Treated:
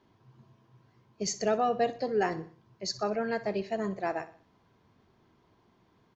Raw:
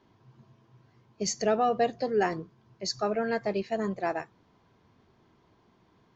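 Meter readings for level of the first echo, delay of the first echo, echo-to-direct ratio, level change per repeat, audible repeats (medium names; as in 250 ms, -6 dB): -16.0 dB, 62 ms, -15.0 dB, -7.0 dB, 3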